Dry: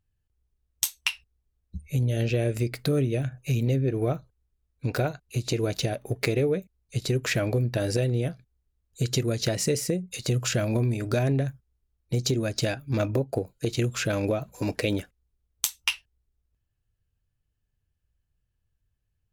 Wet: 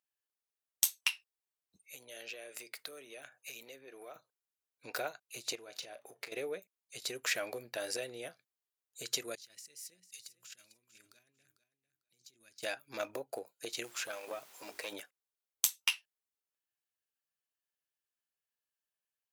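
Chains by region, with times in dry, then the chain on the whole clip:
0:01.76–0:04.16: high-pass filter 510 Hz 6 dB per octave + downward compressor 5 to 1, threshold −33 dBFS
0:05.55–0:06.32: high-shelf EQ 8,700 Hz −9 dB + downward compressor 12 to 1, threshold −32 dBFS + double-tracking delay 35 ms −14 dB
0:09.35–0:12.63: guitar amp tone stack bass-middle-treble 6-0-2 + compressor whose output falls as the input rises −48 dBFS + repeating echo 448 ms, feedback 17%, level −13.5 dB
0:13.83–0:14.91: mains-hum notches 50/100/150/200/250/300/350/400 Hz + background noise pink −48 dBFS + tube saturation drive 16 dB, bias 0.75
whole clip: high-pass filter 700 Hz 12 dB per octave; high-shelf EQ 8,200 Hz +5.5 dB; level −5.5 dB

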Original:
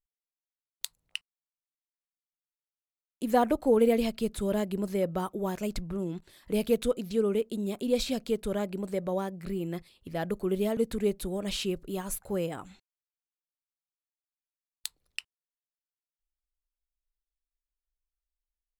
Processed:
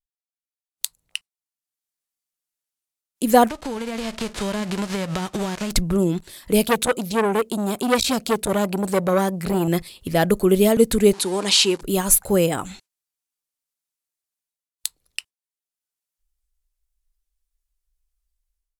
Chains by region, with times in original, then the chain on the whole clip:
0:03.47–0:05.70: spectral envelope flattened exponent 0.3 + downward compressor 10 to 1, threshold −33 dBFS + head-to-tape spacing loss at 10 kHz 23 dB
0:06.63–0:09.68: high-pass filter 42 Hz + saturating transformer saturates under 1,500 Hz
0:11.13–0:11.81: converter with a step at zero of −45.5 dBFS + loudspeaker in its box 300–9,700 Hz, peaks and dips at 590 Hz −8 dB, 930 Hz +9 dB, 4,400 Hz +4 dB, 8,300 Hz −3 dB
whole clip: noise reduction from a noise print of the clip's start 12 dB; parametric band 10,000 Hz +8.5 dB 2 octaves; automatic gain control gain up to 16 dB; level −1 dB

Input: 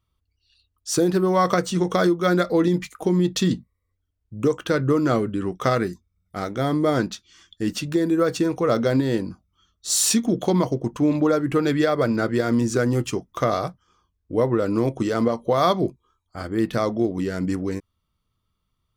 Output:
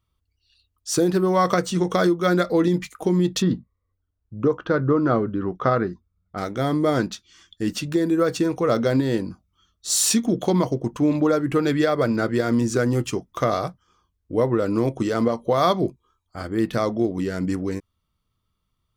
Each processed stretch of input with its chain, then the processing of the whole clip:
0:03.42–0:06.38: low-pass filter 4,800 Hz 24 dB per octave + high shelf with overshoot 1,800 Hz −7 dB, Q 1.5
whole clip: no processing

